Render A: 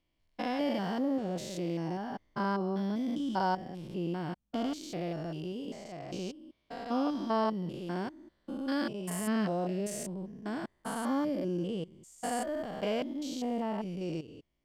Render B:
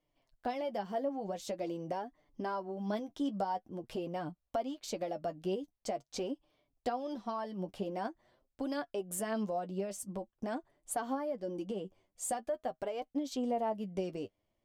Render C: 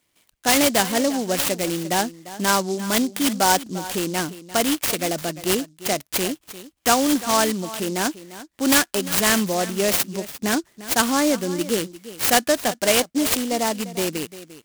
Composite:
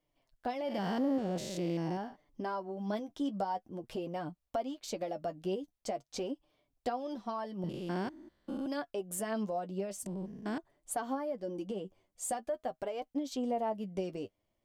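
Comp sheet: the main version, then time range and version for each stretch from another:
B
0:00.75–0:02.05: punch in from A, crossfade 0.24 s
0:07.64–0:08.66: punch in from A
0:10.06–0:10.58: punch in from A
not used: C

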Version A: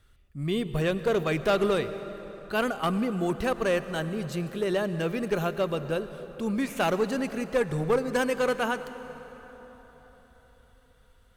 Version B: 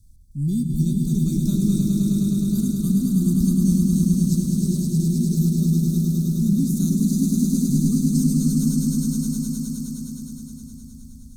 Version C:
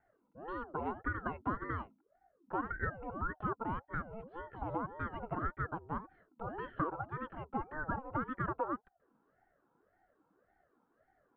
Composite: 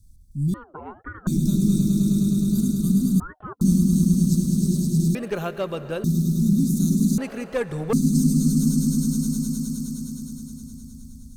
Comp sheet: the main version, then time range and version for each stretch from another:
B
0:00.54–0:01.27: punch in from C
0:03.20–0:03.61: punch in from C
0:05.15–0:06.04: punch in from A
0:07.18–0:07.93: punch in from A

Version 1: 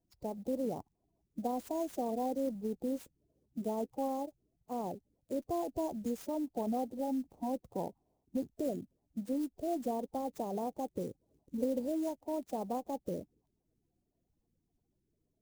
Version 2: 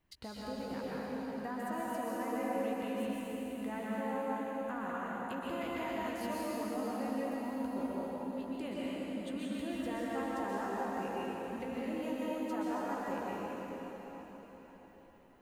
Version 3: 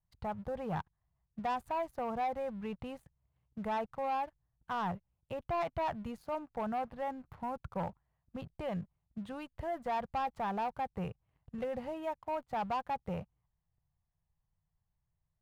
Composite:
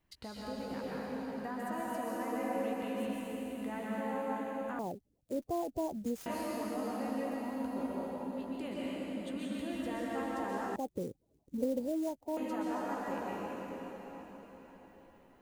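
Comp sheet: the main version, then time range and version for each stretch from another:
2
0:04.79–0:06.26: punch in from 1
0:10.76–0:12.37: punch in from 1
not used: 3

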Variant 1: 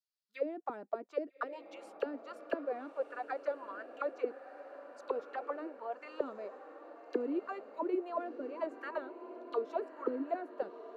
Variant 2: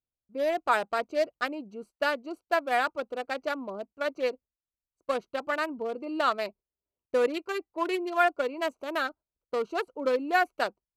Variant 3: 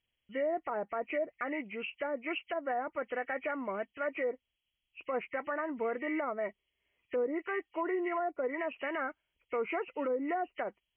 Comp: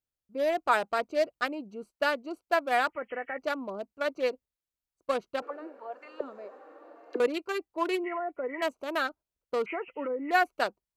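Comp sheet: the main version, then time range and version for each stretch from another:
2
0:02.89–0:03.38: punch in from 3
0:05.42–0:07.20: punch in from 1
0:08.04–0:08.62: punch in from 3
0:09.66–0:10.31: punch in from 3

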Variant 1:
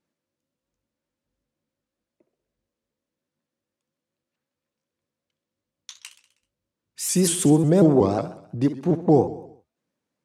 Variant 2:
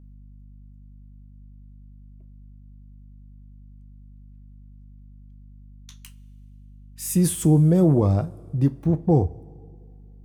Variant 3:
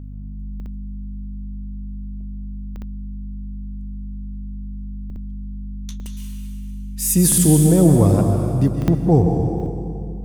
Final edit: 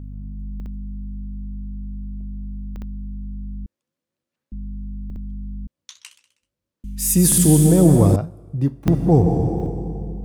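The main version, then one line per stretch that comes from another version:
3
0:03.66–0:04.52: punch in from 1
0:05.67–0:06.84: punch in from 1
0:08.16–0:08.87: punch in from 2

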